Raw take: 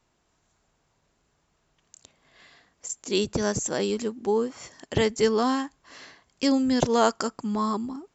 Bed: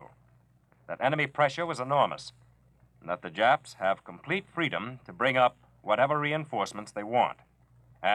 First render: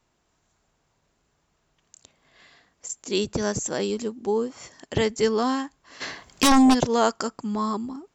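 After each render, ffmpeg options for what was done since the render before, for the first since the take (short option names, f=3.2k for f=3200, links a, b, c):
-filter_complex "[0:a]asettb=1/sr,asplit=3[a][b][c];[a]atrim=end=3.874[d];[b]atrim=start=3.87:end=4.57,asetpts=PTS-STARTPTS,afade=t=in:d=0.004:c=qsin,afade=t=out:st=0.696:d=0.004:c=qsin,equalizer=f=1.8k:t=o:w=1.2:g=-3.5[e];[c]atrim=start=4.566[f];[d][e]acrossfade=d=0.004:c1=hsin:c2=qsin[g];[g][f]acrossfade=d=0.004:c1=qsin:c2=hsin,asplit=3[h][i][j];[h]afade=t=out:st=6:d=0.02[k];[i]aeval=exprs='0.237*sin(PI/2*3.16*val(0)/0.237)':c=same,afade=t=in:st=6:d=0.02,afade=t=out:st=6.73:d=0.02[l];[j]afade=t=in:st=6.73:d=0.02[m];[k][l][m]amix=inputs=3:normalize=0"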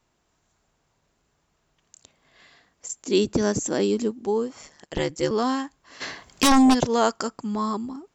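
-filter_complex "[0:a]asettb=1/sr,asplit=3[a][b][c];[a]atrim=end=3.064[d];[b]atrim=start=3.06:end=4.11,asetpts=PTS-STARTPTS,afade=t=in:d=0.004:c=qsin,afade=t=out:st=1.046:d=0.004:c=qsin,equalizer=f=290:w=1.5:g=8.5[e];[c]atrim=start=4.106[f];[d][e]acrossfade=d=0.004:c1=hsin:c2=qsin[g];[g][f]acrossfade=d=0.004:c1=qsin:c2=hsin,asettb=1/sr,asplit=3[h][i][j];[h]atrim=end=4.614[k];[i]atrim=start=4.61:end=5.31,asetpts=PTS-STARTPTS,afade=t=in:d=0.004:c=qsin,afade=t=out:st=0.696:d=0.004:c=qsin,aeval=exprs='val(0)*sin(2*PI*74*n/s)':c=same[l];[j]atrim=start=5.306[m];[k][l]acrossfade=d=0.004:c1=hsin:c2=qsin[n];[n][m]acrossfade=d=0.004:c1=qsin:c2=hsin"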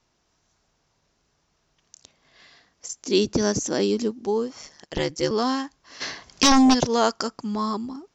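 -af "highshelf=f=7.6k:t=q:w=3:g=-11"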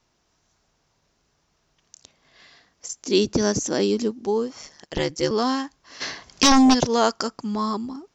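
-af "volume=1dB"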